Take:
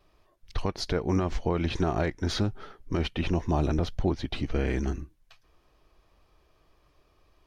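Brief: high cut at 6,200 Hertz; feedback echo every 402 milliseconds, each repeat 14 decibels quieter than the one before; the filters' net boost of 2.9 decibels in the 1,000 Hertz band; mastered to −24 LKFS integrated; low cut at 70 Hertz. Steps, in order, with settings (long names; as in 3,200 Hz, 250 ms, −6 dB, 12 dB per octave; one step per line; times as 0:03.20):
high-pass filter 70 Hz
low-pass filter 6,200 Hz
parametric band 1,000 Hz +4 dB
repeating echo 402 ms, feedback 20%, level −14 dB
level +5.5 dB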